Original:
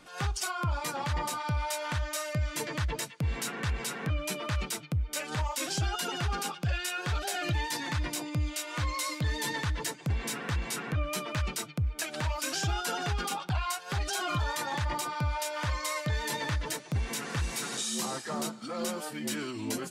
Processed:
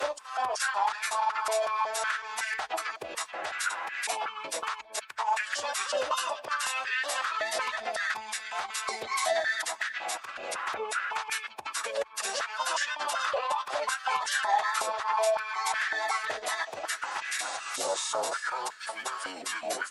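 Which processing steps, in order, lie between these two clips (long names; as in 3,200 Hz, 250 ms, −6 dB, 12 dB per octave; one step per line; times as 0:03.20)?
slices reordered back to front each 185 ms, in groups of 2
phase-vocoder pitch shift with formants kept −5.5 semitones
high-pass on a step sequencer 5.4 Hz 560–1,700 Hz
level +1 dB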